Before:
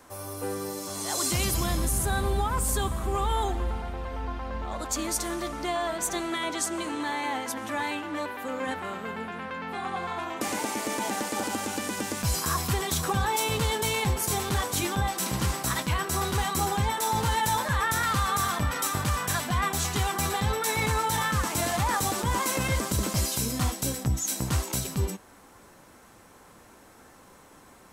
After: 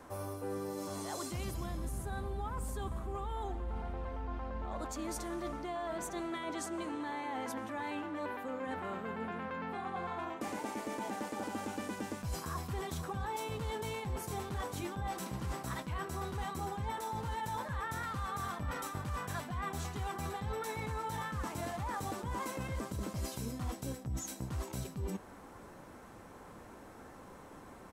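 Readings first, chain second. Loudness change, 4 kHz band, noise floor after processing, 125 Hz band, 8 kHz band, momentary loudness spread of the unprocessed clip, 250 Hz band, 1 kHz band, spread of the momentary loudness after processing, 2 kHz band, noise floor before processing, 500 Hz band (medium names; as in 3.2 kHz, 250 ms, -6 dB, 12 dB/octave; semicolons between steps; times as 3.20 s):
-11.5 dB, -16.5 dB, -53 dBFS, -10.5 dB, -17.5 dB, 8 LU, -8.0 dB, -10.5 dB, 3 LU, -13.0 dB, -53 dBFS, -8.5 dB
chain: treble shelf 2.1 kHz -11 dB; reverse; compression 6:1, threshold -39 dBFS, peak gain reduction 16.5 dB; reverse; echo from a far wall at 27 m, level -29 dB; trim +2.5 dB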